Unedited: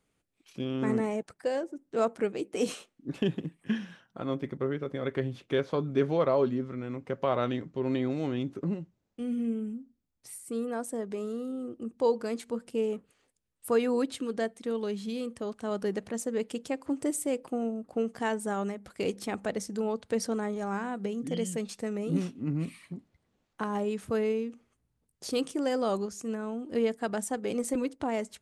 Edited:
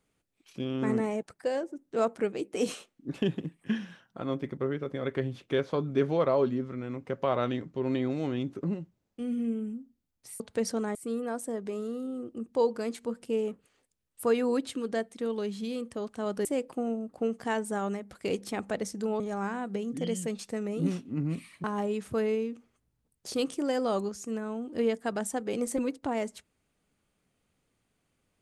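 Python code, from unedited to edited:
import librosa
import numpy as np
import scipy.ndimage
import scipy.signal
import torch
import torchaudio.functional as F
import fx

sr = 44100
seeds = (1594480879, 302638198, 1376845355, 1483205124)

y = fx.edit(x, sr, fx.cut(start_s=15.9, length_s=1.3),
    fx.move(start_s=19.95, length_s=0.55, to_s=10.4),
    fx.cut(start_s=22.94, length_s=0.67), tone=tone)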